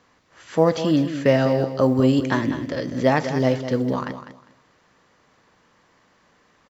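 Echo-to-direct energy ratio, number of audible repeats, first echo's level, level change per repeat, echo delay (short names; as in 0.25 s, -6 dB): -11.0 dB, 2, -11.0 dB, -13.0 dB, 0.201 s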